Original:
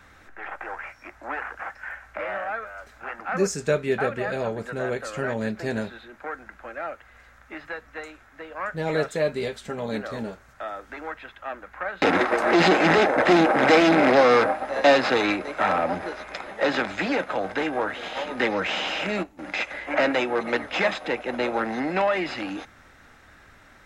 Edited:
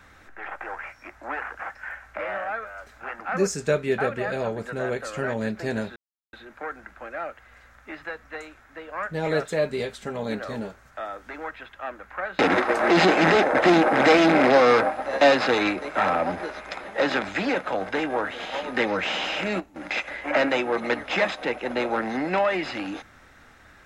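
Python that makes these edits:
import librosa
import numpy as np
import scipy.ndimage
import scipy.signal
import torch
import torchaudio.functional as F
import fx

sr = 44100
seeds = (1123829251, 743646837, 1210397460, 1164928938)

y = fx.edit(x, sr, fx.insert_silence(at_s=5.96, length_s=0.37), tone=tone)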